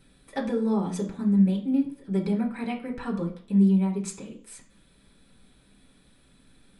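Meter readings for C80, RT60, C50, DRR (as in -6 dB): 15.0 dB, 0.50 s, 10.5 dB, -3.5 dB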